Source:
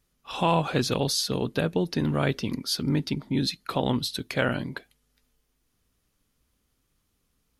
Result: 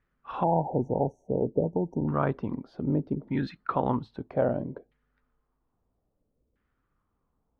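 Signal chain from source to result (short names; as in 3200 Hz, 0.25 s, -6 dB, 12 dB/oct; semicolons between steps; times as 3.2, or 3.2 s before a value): LFO low-pass saw down 0.61 Hz 460–1800 Hz; spectral delete 0.43–2.08, 950–5600 Hz; gain -3 dB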